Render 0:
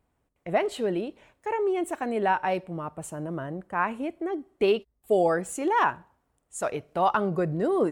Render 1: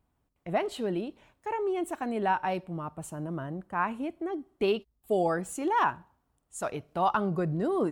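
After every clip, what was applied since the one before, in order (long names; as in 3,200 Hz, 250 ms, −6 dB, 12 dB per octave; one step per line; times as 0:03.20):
graphic EQ with 10 bands 500 Hz −6 dB, 2,000 Hz −5 dB, 8,000 Hz −4 dB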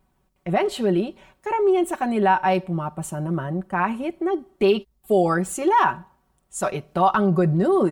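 comb filter 5.3 ms
in parallel at +3 dB: brickwall limiter −19.5 dBFS, peak gain reduction 8 dB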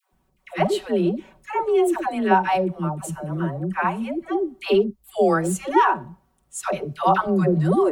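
all-pass dispersion lows, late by 127 ms, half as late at 590 Hz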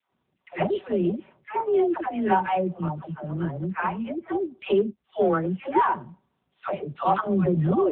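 in parallel at −5 dB: hard clipping −12.5 dBFS, distortion −18 dB
on the sum: level −6.5 dB
AMR narrowband 6.7 kbit/s 8,000 Hz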